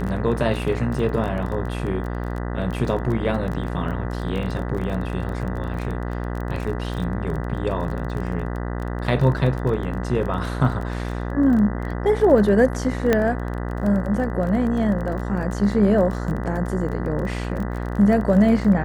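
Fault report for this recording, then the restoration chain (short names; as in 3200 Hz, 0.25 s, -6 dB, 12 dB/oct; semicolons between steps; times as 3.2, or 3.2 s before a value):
buzz 60 Hz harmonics 33 -27 dBFS
crackle 21/s -28 dBFS
13.13 pop -5 dBFS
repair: de-click; de-hum 60 Hz, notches 33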